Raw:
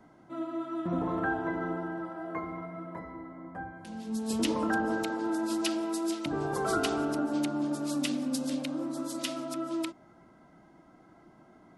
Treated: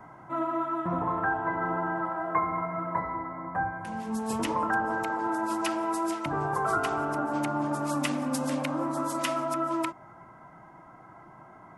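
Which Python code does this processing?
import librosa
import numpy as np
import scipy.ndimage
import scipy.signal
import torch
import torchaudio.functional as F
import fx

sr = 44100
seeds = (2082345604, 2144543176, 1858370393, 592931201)

y = fx.graphic_eq(x, sr, hz=(125, 250, 1000, 2000, 4000), db=(8, -5, 12, 5, -8))
y = fx.rider(y, sr, range_db=4, speed_s=0.5)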